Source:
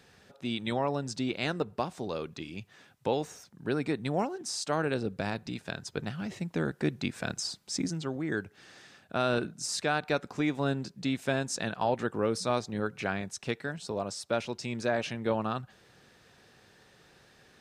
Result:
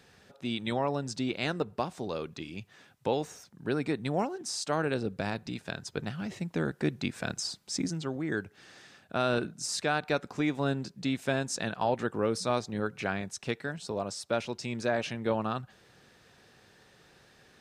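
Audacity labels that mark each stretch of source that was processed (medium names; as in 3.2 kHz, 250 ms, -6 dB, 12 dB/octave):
no events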